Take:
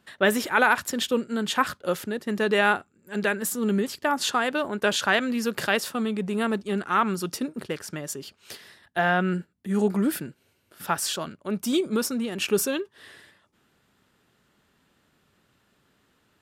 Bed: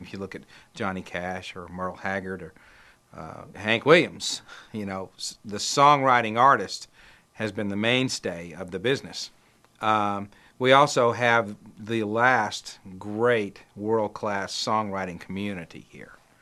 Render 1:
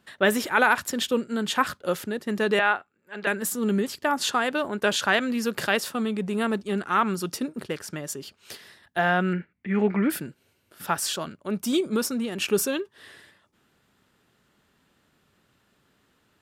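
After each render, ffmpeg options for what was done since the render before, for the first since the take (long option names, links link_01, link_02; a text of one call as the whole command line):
ffmpeg -i in.wav -filter_complex "[0:a]asettb=1/sr,asplit=3[link_01][link_02][link_03];[link_01]atrim=end=2.594[link_04];[link_02]atrim=start=2.59:end=3.27,asetpts=PTS-STARTPTS,afade=type=in:duration=0.004:curve=qsin,afade=type=out:start_time=0.676:duration=0.004:curve=qsin,acrossover=split=520 3900:gain=0.224 1 0.141[link_05][link_06][link_07];[link_05][link_06][link_07]amix=inputs=3:normalize=0[link_08];[link_03]atrim=start=3.266[link_09];[link_04][link_08]acrossfade=duration=0.004:curve1=hsin:curve2=qsin[link_10];[link_10][link_09]acrossfade=duration=0.004:curve1=qsin:curve2=hsin,asettb=1/sr,asplit=3[link_11][link_12][link_13];[link_11]atrim=end=9.334[link_14];[link_12]atrim=start=9.33:end=10.1,asetpts=PTS-STARTPTS,afade=type=in:duration=0.004:curve=qsin,afade=type=out:start_time=0.766:duration=0.004:curve=qsin,lowpass=frequency=2200:width_type=q:width=5.4[link_15];[link_13]atrim=start=10.096[link_16];[link_14][link_15]acrossfade=duration=0.004:curve1=hsin:curve2=qsin[link_17];[link_17][link_16]acrossfade=duration=0.004:curve1=qsin:curve2=hsin" out.wav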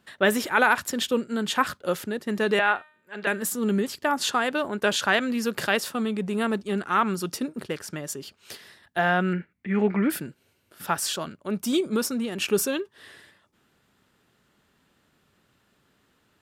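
ffmpeg -i in.wav -filter_complex "[0:a]asplit=3[link_01][link_02][link_03];[link_01]afade=type=out:start_time=2.32:duration=0.02[link_04];[link_02]bandreject=frequency=305.8:width_type=h:width=4,bandreject=frequency=611.6:width_type=h:width=4,bandreject=frequency=917.4:width_type=h:width=4,bandreject=frequency=1223.2:width_type=h:width=4,bandreject=frequency=1529:width_type=h:width=4,bandreject=frequency=1834.8:width_type=h:width=4,bandreject=frequency=2140.6:width_type=h:width=4,bandreject=frequency=2446.4:width_type=h:width=4,bandreject=frequency=2752.2:width_type=h:width=4,bandreject=frequency=3058:width_type=h:width=4,bandreject=frequency=3363.8:width_type=h:width=4,bandreject=frequency=3669.6:width_type=h:width=4,bandreject=frequency=3975.4:width_type=h:width=4,bandreject=frequency=4281.2:width_type=h:width=4,bandreject=frequency=4587:width_type=h:width=4,bandreject=frequency=4892.8:width_type=h:width=4,bandreject=frequency=5198.6:width_type=h:width=4,bandreject=frequency=5504.4:width_type=h:width=4,bandreject=frequency=5810.2:width_type=h:width=4,bandreject=frequency=6116:width_type=h:width=4,bandreject=frequency=6421.8:width_type=h:width=4,bandreject=frequency=6727.6:width_type=h:width=4,bandreject=frequency=7033.4:width_type=h:width=4,bandreject=frequency=7339.2:width_type=h:width=4,bandreject=frequency=7645:width_type=h:width=4,bandreject=frequency=7950.8:width_type=h:width=4,bandreject=frequency=8256.6:width_type=h:width=4,bandreject=frequency=8562.4:width_type=h:width=4,bandreject=frequency=8868.2:width_type=h:width=4,bandreject=frequency=9174:width_type=h:width=4,bandreject=frequency=9479.8:width_type=h:width=4,bandreject=frequency=9785.6:width_type=h:width=4,bandreject=frequency=10091.4:width_type=h:width=4,bandreject=frequency=10397.2:width_type=h:width=4,bandreject=frequency=10703:width_type=h:width=4,bandreject=frequency=11008.8:width_type=h:width=4,bandreject=frequency=11314.6:width_type=h:width=4,bandreject=frequency=11620.4:width_type=h:width=4,bandreject=frequency=11926.2:width_type=h:width=4,afade=type=in:start_time=2.32:duration=0.02,afade=type=out:start_time=3.41:duration=0.02[link_05];[link_03]afade=type=in:start_time=3.41:duration=0.02[link_06];[link_04][link_05][link_06]amix=inputs=3:normalize=0" out.wav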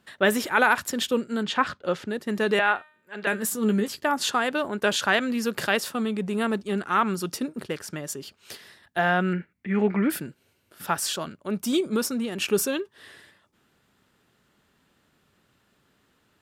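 ffmpeg -i in.wav -filter_complex "[0:a]asettb=1/sr,asplit=3[link_01][link_02][link_03];[link_01]atrim=end=1.434[link_04];[link_02]atrim=start=1.43:end=2.1,asetpts=PTS-STARTPTS,afade=type=in:duration=0.004:curve=qsin,afade=type=out:start_time=0.666:duration=0.004:curve=qsin,lowpass=4800[link_05];[link_03]atrim=start=2.096[link_06];[link_04][link_05]acrossfade=duration=0.004:curve1=hsin:curve2=qsin[link_07];[link_07][link_06]acrossfade=duration=0.004:curve1=qsin:curve2=hsin,asettb=1/sr,asplit=3[link_08][link_09][link_10];[link_08]atrim=end=3.314[link_11];[link_09]atrim=start=3.31:end=4.04,asetpts=PTS-STARTPTS,afade=type=in:duration=0.004:curve=qsin,afade=type=out:start_time=0.726:duration=0.004:curve=qsin,asplit=2[link_12][link_13];[link_13]adelay=14,volume=-8.5dB[link_14];[link_12][link_14]amix=inputs=2:normalize=0,atrim=end_sample=32193[link_15];[link_10]atrim=start=4.036[link_16];[link_11][link_15]acrossfade=duration=0.004:curve1=hsin:curve2=qsin[link_17];[link_17][link_16]acrossfade=duration=0.004:curve1=qsin:curve2=hsin" out.wav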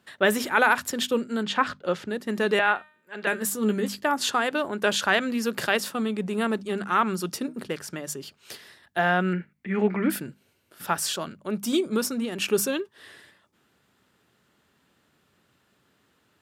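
ffmpeg -i in.wav -af "highpass=62,bandreject=frequency=50:width_type=h:width=6,bandreject=frequency=100:width_type=h:width=6,bandreject=frequency=150:width_type=h:width=6,bandreject=frequency=200:width_type=h:width=6,bandreject=frequency=250:width_type=h:width=6" out.wav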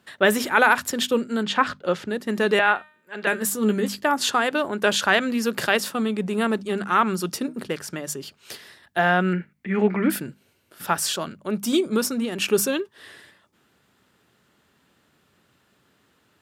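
ffmpeg -i in.wav -af "volume=3dB" out.wav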